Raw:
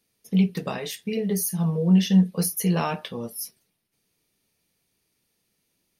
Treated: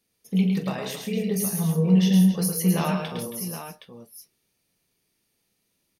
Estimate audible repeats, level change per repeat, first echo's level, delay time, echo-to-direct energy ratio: 6, no steady repeat, -12.0 dB, 44 ms, -2.0 dB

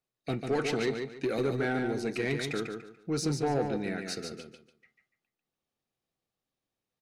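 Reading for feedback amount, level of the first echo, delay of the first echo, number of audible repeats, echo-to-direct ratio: 27%, -5.5 dB, 0.145 s, 3, -5.0 dB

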